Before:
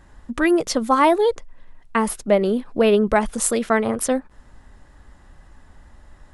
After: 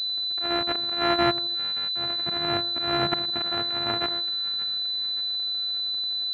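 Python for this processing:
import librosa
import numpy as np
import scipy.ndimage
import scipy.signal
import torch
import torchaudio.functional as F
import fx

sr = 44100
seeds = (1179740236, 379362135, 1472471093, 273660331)

p1 = np.r_[np.sort(x[:len(x) // 128 * 128].reshape(-1, 128), axis=1).ravel(), x[len(x) // 128 * 128:]]
p2 = scipy.signal.sosfilt(scipy.signal.butter(2, 170.0, 'highpass', fs=sr, output='sos'), p1)
p3 = fx.peak_eq(p2, sr, hz=320.0, db=-13.0, octaves=2.2)
p4 = fx.auto_swell(p3, sr, attack_ms=308.0)
p5 = fx.notch_comb(p4, sr, f0_hz=530.0)
p6 = p5 + fx.echo_split(p5, sr, split_hz=1200.0, low_ms=81, high_ms=575, feedback_pct=52, wet_db=-15.0, dry=0)
p7 = fx.pwm(p6, sr, carrier_hz=4000.0)
y = p7 * 10.0 ** (5.0 / 20.0)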